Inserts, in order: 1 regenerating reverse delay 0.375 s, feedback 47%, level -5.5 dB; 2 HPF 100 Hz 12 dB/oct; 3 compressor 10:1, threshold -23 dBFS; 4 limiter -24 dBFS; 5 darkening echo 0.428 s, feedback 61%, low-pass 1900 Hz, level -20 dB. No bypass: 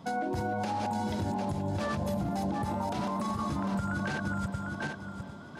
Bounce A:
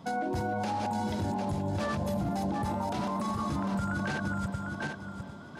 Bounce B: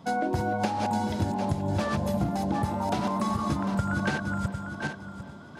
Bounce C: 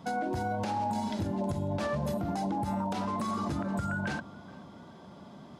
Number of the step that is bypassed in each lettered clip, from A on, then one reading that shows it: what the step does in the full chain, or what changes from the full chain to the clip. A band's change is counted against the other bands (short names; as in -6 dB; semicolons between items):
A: 3, mean gain reduction 2.5 dB; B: 4, mean gain reduction 3.0 dB; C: 1, momentary loudness spread change +14 LU